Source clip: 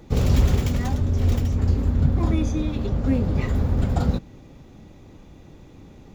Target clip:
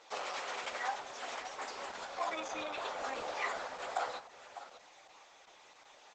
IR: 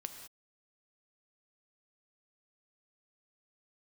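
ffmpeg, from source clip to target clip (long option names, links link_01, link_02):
-filter_complex "[0:a]asplit=3[link_01][link_02][link_03];[link_01]afade=type=out:start_time=1.58:duration=0.02[link_04];[link_02]acontrast=26,afade=type=in:start_time=1.58:duration=0.02,afade=type=out:start_time=3.66:duration=0.02[link_05];[link_03]afade=type=in:start_time=3.66:duration=0.02[link_06];[link_04][link_05][link_06]amix=inputs=3:normalize=0,aeval=exprs='0.708*(cos(1*acos(clip(val(0)/0.708,-1,1)))-cos(1*PI/2))+0.0316*(cos(2*acos(clip(val(0)/0.708,-1,1)))-cos(2*PI/2))+0.0282*(cos(3*acos(clip(val(0)/0.708,-1,1)))-cos(3*PI/2))+0.01*(cos(5*acos(clip(val(0)/0.708,-1,1)))-cos(5*PI/2))':channel_layout=same,acrossover=split=2500|5000[link_07][link_08][link_09];[link_07]acompressor=threshold=-17dB:ratio=4[link_10];[link_08]acompressor=threshold=-56dB:ratio=4[link_11];[link_09]acompressor=threshold=-57dB:ratio=4[link_12];[link_10][link_11][link_12]amix=inputs=3:normalize=0,highpass=frequency=700:width=0.5412,highpass=frequency=700:width=1.3066,aecho=1:1:600:0.211,flanger=delay=8.8:depth=7.3:regen=-5:speed=0.4:shape=triangular,volume=5dB" -ar 48000 -c:a libopus -b:a 10k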